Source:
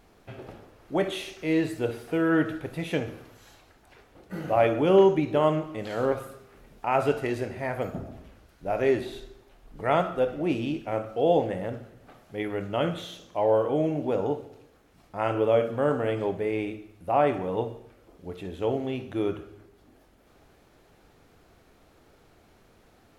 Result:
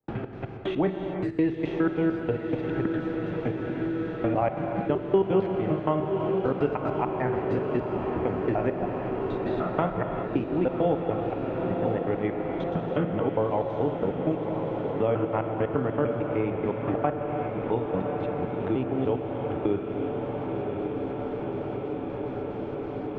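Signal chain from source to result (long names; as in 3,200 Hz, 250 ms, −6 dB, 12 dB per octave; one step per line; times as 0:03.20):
slices reordered back to front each 150 ms, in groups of 4
parametric band 570 Hz −5.5 dB 0.51 octaves
gate pattern ".xx.xxx.xxx.x..x" 184 BPM −60 dB
head-to-tape spacing loss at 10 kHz 36 dB
feedback delay with all-pass diffusion 1,049 ms, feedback 72%, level −9.5 dB
reverb whose tail is shaped and stops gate 420 ms flat, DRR 6.5 dB
multiband upward and downward compressor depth 70%
level +4 dB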